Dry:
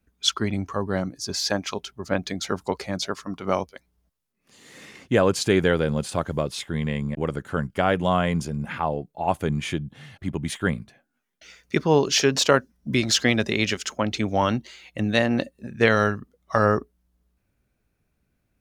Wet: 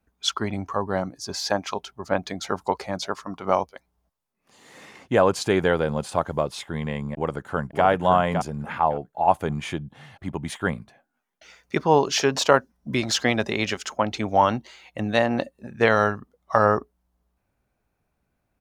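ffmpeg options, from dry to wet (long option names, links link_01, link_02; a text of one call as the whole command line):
ffmpeg -i in.wav -filter_complex "[0:a]asplit=2[link_01][link_02];[link_02]afade=type=in:start_time=7.14:duration=0.01,afade=type=out:start_time=7.85:duration=0.01,aecho=0:1:560|1120|1680:0.473151|0.0946303|0.0189261[link_03];[link_01][link_03]amix=inputs=2:normalize=0,equalizer=frequency=850:width=1.1:gain=10,volume=-3.5dB" out.wav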